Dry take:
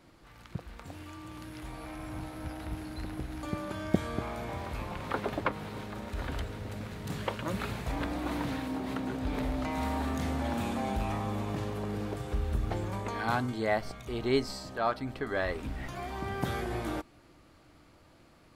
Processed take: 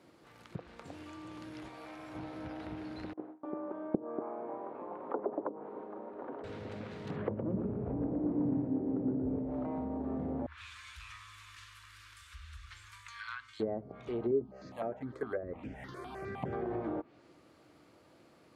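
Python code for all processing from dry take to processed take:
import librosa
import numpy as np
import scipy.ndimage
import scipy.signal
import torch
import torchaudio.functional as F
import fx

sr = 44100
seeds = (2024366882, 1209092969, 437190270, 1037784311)

y = fx.chain(x, sr, fx.low_shelf(hz=430.0, db=-8.5),
    fx.resample_linear(factor=2), at=(1.68, 2.15))
y = fx.chain(y, sr, fx.cheby1_bandpass(low_hz=300.0, high_hz=1000.0, order=2),
    fx.gate_hold(open_db=-36.0, close_db=-42.0, hold_ms=71.0, range_db=-21, attack_ms=1.4, release_ms=100.0), at=(3.13, 6.44))
y = fx.chain(y, sr, fx.leveller(passes=1),
    fx.air_absorb(metres=270.0),
    fx.echo_feedback(ms=116, feedback_pct=49, wet_db=-4.0), at=(7.16, 9.38))
y = fx.chain(y, sr, fx.cheby2_bandstop(low_hz=150.0, high_hz=630.0, order=4, stop_db=40),
    fx.fixed_phaser(hz=330.0, stages=4), at=(10.46, 13.6))
y = fx.chain(y, sr, fx.resample_bad(factor=4, down='none', up='hold'),
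    fx.phaser_held(hz=9.8, low_hz=750.0, high_hz=3900.0), at=(14.31, 16.53))
y = scipy.signal.sosfilt(scipy.signal.butter(2, 120.0, 'highpass', fs=sr, output='sos'), y)
y = fx.env_lowpass_down(y, sr, base_hz=390.0, full_db=-28.5)
y = fx.peak_eq(y, sr, hz=440.0, db=5.5, octaves=1.1)
y = y * librosa.db_to_amplitude(-3.5)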